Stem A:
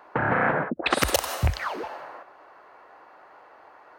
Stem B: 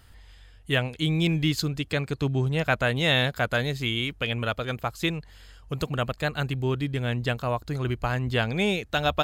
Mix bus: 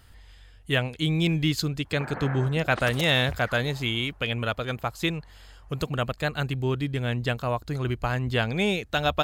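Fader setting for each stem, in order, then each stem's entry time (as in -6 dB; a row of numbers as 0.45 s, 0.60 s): -13.5 dB, 0.0 dB; 1.85 s, 0.00 s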